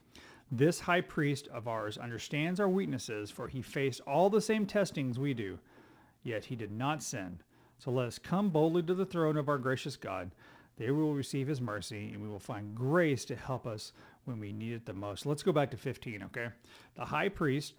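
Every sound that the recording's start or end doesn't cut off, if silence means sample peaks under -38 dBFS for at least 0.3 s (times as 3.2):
0.52–5.55
6.26–7.34
7.87–10.27
10.8–13.85
14.27–16.48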